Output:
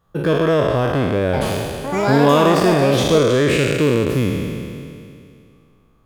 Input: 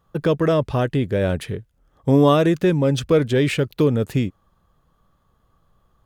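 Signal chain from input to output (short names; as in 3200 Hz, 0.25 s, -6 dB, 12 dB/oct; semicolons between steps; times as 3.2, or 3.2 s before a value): spectral trails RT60 2.42 s; 1.24–3.86 echoes that change speed 91 ms, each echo +6 st, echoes 2, each echo -6 dB; gain -1 dB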